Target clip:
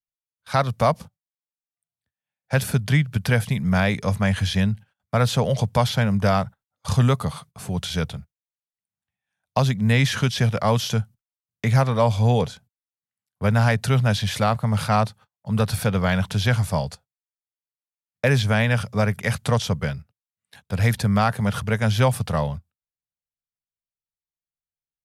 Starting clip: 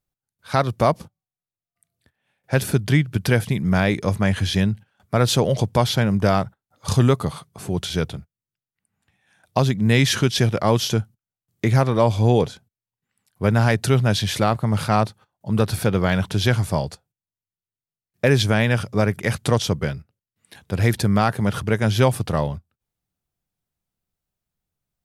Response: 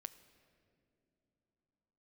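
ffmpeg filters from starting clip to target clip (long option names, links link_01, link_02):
-filter_complex "[0:a]agate=range=-21dB:threshold=-45dB:ratio=16:detection=peak,equalizer=frequency=340:width_type=o:width=0.48:gain=-14.5,acrossover=split=180|2600[link_01][link_02][link_03];[link_03]alimiter=limit=-20.5dB:level=0:latency=1:release=110[link_04];[link_01][link_02][link_04]amix=inputs=3:normalize=0"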